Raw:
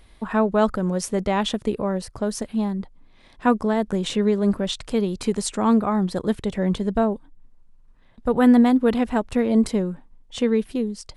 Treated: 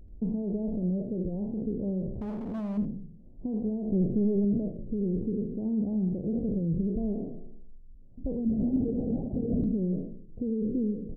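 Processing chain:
peak hold with a decay on every bin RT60 0.80 s
0:03.92–0:04.45: leveller curve on the samples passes 3
downward compressor 3 to 1, threshold −22 dBFS, peak gain reduction 9.5 dB
brickwall limiter −19.5 dBFS, peak gain reduction 8 dB
Gaussian smoothing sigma 21 samples
0:02.21–0:02.78: gain into a clipping stage and back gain 33.5 dB
single-tap delay 84 ms −12.5 dB
0:08.46–0:09.64: linear-prediction vocoder at 8 kHz whisper
wow of a warped record 33 1/3 rpm, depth 160 cents
level +2 dB

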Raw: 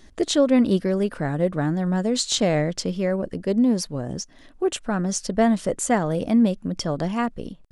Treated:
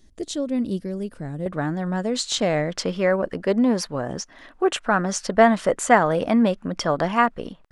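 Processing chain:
parametric band 1,300 Hz −9.5 dB 3 octaves, from 0:01.46 +6 dB, from 0:02.72 +14.5 dB
level −4 dB

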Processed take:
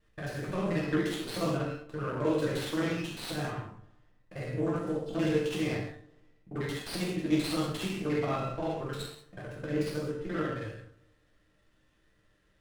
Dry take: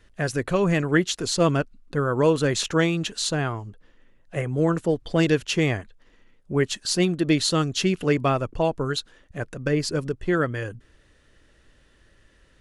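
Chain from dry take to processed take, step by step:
reversed piece by piece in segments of 44 ms
tuned comb filter 150 Hz, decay 0.39 s, harmonics all, mix 70%
on a send: bucket-brigade delay 207 ms, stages 2,048, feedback 31%, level −22.5 dB
on the sum: reverb whose tail is shaped and stops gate 230 ms falling, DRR −5 dB
windowed peak hold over 5 samples
level −7 dB

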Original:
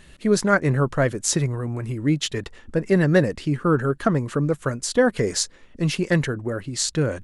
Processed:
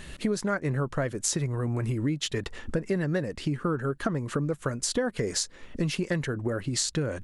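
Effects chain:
downward compressor 6 to 1, threshold −32 dBFS, peak gain reduction 19 dB
level +6 dB

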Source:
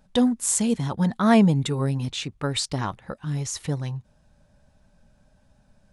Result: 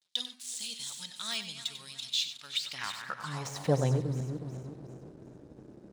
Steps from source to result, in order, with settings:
feedback delay that plays each chunk backwards 183 ms, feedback 65%, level −14 dB
de-essing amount 70%
RIAA equalisation playback
noise gate with hold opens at −40 dBFS
bass and treble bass +13 dB, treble +11 dB
slack as between gear wheels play −38 dBFS
high-pass filter sweep 3,800 Hz → 340 Hz, 0:02.47–0:04.11
single-tap delay 95 ms −11 dB

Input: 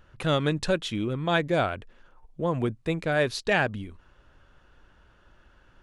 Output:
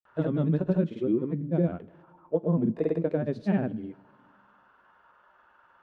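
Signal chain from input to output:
envelope filter 210–1,100 Hz, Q 2.4, down, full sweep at −21.5 dBFS
granular cloud, pitch spread up and down by 0 semitones
coupled-rooms reverb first 0.2 s, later 2 s, from −19 dB, DRR 12.5 dB
level +9 dB

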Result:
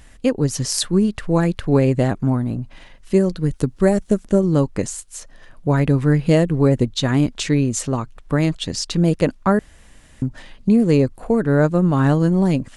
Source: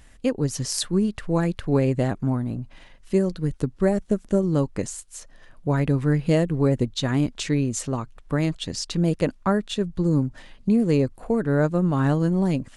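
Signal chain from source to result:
0:03.51–0:04.20: high-shelf EQ 4,500 Hz +6 dB
0:09.59–0:10.22: fill with room tone
level +5 dB

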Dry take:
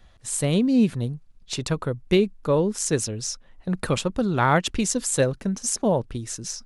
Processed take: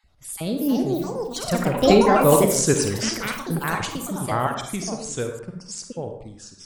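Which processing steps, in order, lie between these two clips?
time-frequency cells dropped at random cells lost 22%
source passing by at 0:02.38, 41 m/s, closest 29 metres
convolution reverb RT60 0.65 s, pre-delay 38 ms, DRR 4.5 dB
delay with pitch and tempo change per echo 404 ms, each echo +5 semitones, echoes 3
level +4.5 dB

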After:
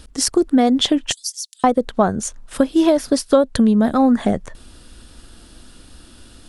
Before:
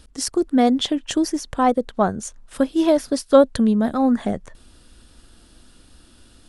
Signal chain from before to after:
0:01.12–0:01.64: inverse Chebyshev high-pass filter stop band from 1,000 Hz, stop band 70 dB
downward compressor 6 to 1, threshold −17 dBFS, peak gain reduction 9.5 dB
level +6.5 dB

